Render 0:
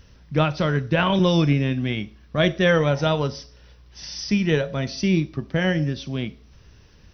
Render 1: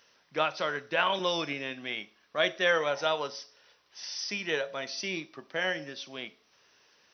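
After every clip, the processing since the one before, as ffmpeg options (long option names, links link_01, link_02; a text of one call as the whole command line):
ffmpeg -i in.wav -af "highpass=600,volume=-3.5dB" out.wav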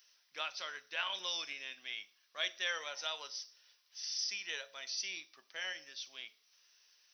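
ffmpeg -i in.wav -af "aderivative,volume=2dB" out.wav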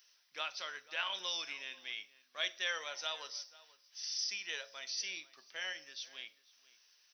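ffmpeg -i in.wav -filter_complex "[0:a]asplit=2[link_01][link_02];[link_02]adelay=489.8,volume=-19dB,highshelf=frequency=4000:gain=-11[link_03];[link_01][link_03]amix=inputs=2:normalize=0" out.wav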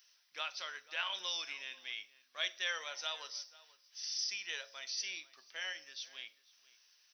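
ffmpeg -i in.wav -af "lowshelf=frequency=450:gain=-6.5" out.wav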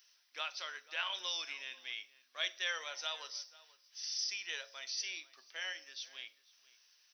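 ffmpeg -i in.wav -af "highpass=frequency=230:width=0.5412,highpass=frequency=230:width=1.3066" out.wav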